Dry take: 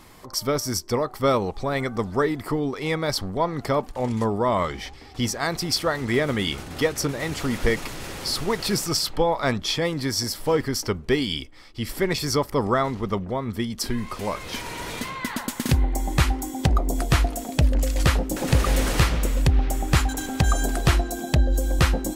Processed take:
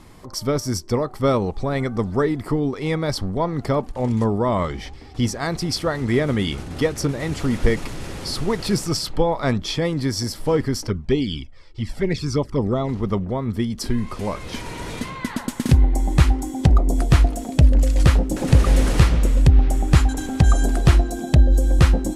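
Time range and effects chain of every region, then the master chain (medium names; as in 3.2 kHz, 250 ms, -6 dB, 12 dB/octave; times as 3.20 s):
10.87–12.89 s: low-pass 7.6 kHz + touch-sensitive flanger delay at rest 2.6 ms, full sweep at -17 dBFS
whole clip: low-pass 12 kHz 24 dB/octave; bass shelf 430 Hz +8.5 dB; trim -2 dB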